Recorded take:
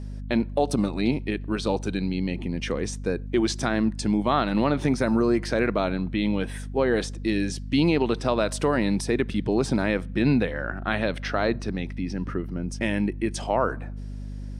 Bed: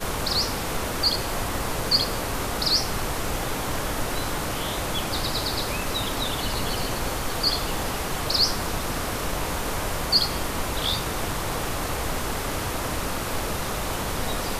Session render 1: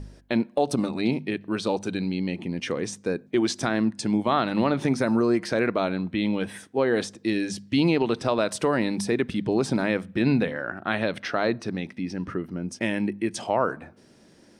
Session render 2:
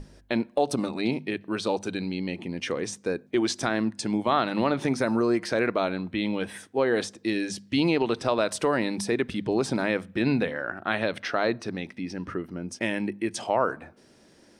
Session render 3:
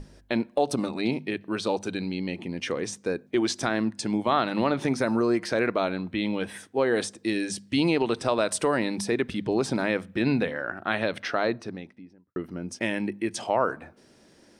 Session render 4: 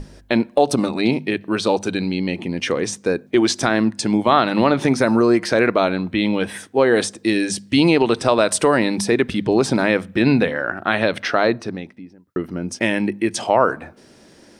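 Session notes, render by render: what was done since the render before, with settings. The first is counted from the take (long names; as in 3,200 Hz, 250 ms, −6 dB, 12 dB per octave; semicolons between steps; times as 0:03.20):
hum removal 50 Hz, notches 5
parametric band 170 Hz −4.5 dB 1.5 octaves; mains-hum notches 50/100 Hz
0:06.78–0:08.79: parametric band 8,700 Hz +7 dB 0.39 octaves; 0:11.32–0:12.36: fade out and dull
level +8.5 dB; brickwall limiter −2 dBFS, peak gain reduction 1.5 dB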